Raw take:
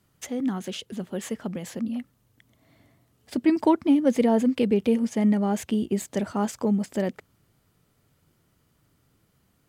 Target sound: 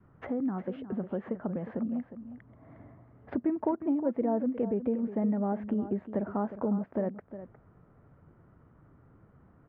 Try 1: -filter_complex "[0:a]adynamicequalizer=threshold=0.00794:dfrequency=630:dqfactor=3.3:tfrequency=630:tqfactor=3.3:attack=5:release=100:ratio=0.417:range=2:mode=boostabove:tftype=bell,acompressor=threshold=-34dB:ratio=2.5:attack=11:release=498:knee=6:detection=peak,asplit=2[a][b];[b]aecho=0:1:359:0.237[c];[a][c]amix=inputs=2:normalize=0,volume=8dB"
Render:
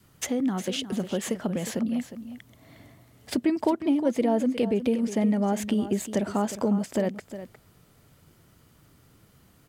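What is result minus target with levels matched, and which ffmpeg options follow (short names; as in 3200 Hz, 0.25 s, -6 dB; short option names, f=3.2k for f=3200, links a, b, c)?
2000 Hz band +6.5 dB; compressor: peak gain reduction -5 dB
-filter_complex "[0:a]adynamicequalizer=threshold=0.00794:dfrequency=630:dqfactor=3.3:tfrequency=630:tqfactor=3.3:attack=5:release=100:ratio=0.417:range=2:mode=boostabove:tftype=bell,lowpass=f=1.5k:w=0.5412,lowpass=f=1.5k:w=1.3066,acompressor=threshold=-42.5dB:ratio=2.5:attack=11:release=498:knee=6:detection=peak,asplit=2[a][b];[b]aecho=0:1:359:0.237[c];[a][c]amix=inputs=2:normalize=0,volume=8dB"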